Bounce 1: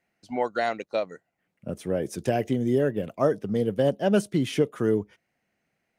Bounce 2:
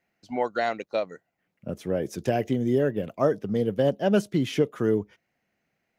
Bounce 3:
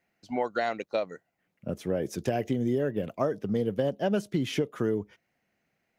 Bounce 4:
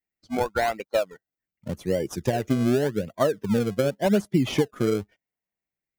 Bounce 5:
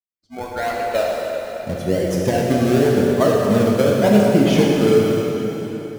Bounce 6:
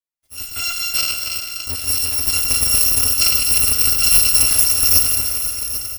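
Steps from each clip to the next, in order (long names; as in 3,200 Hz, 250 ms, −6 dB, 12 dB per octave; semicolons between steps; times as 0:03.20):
parametric band 9,100 Hz −11 dB 0.27 octaves
downward compressor, threshold −23 dBFS, peak gain reduction 7 dB
spectral dynamics exaggerated over time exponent 1.5; in parallel at −7 dB: sample-and-hold swept by an LFO 33×, swing 100% 0.87 Hz; on the sum: level +5 dB
fade in at the beginning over 1.17 s; dense smooth reverb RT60 4 s, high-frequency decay 0.8×, DRR −3.5 dB; level +3.5 dB
samples in bit-reversed order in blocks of 256 samples; single-tap delay 791 ms −13.5 dB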